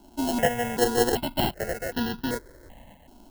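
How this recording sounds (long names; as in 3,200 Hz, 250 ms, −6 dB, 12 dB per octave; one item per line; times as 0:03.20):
a buzz of ramps at a fixed pitch in blocks of 16 samples
tremolo saw up 0.68 Hz, depth 45%
aliases and images of a low sample rate 1,200 Hz, jitter 0%
notches that jump at a steady rate 2.6 Hz 500–2,200 Hz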